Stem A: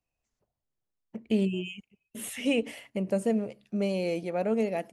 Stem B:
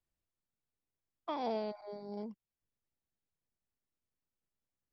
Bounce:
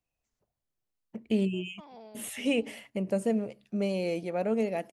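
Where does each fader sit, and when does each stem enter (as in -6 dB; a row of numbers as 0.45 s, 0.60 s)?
-1.0 dB, -13.5 dB; 0.00 s, 0.50 s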